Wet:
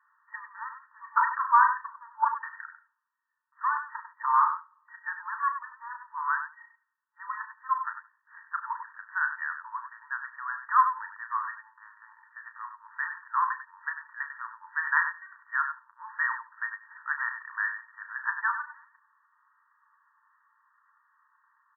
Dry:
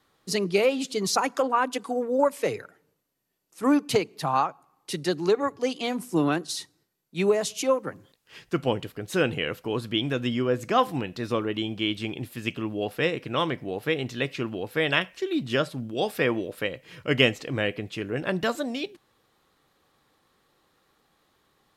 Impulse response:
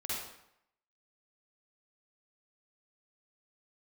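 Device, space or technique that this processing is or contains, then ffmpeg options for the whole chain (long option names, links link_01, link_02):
slapback doubling: -filter_complex "[0:a]asettb=1/sr,asplit=3[link_01][link_02][link_03];[link_01]atrim=end=1.294[link_04];[link_02]atrim=start=1.29:end=1.81,asetpts=PTS-STARTPTS,afade=type=in:duration=0.004:curve=qsin,afade=type=out:start_time=0.516:duration=0.004:curve=qsin,asplit=2[link_05][link_06];[link_06]adelay=41,volume=-8dB[link_07];[link_05][link_07]amix=inputs=2:normalize=0,atrim=end_sample=22932[link_08];[link_03]atrim=start=1.806[link_09];[link_04][link_08]acrossfade=duration=0.004:curve1=hsin:curve2=qsin[link_10];[link_10][link_09]acrossfade=duration=0.004:curve1=qsin:curve2=hsin,asplit=3[link_11][link_12][link_13];[link_12]adelay=34,volume=-8.5dB[link_14];[link_13]adelay=97,volume=-9dB[link_15];[link_11][link_14][link_15]amix=inputs=3:normalize=0,afftfilt=real='re*between(b*sr/4096,880,1900)':imag='im*between(b*sr/4096,880,1900)':win_size=4096:overlap=0.75,aecho=1:1:76:0.133,volume=4dB"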